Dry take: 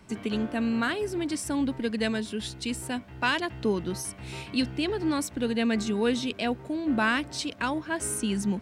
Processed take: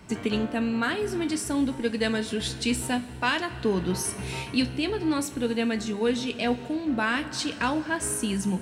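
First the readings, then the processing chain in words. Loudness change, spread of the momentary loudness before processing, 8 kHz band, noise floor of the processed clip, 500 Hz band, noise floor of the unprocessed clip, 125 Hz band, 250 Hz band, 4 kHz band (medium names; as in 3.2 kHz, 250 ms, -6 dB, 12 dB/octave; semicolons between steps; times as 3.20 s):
+1.5 dB, 7 LU, +3.0 dB, -39 dBFS, +2.0 dB, -45 dBFS, +2.5 dB, +1.0 dB, +2.0 dB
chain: two-slope reverb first 0.24 s, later 3.4 s, from -18 dB, DRR 6.5 dB; gain riding within 5 dB 0.5 s; trim +1 dB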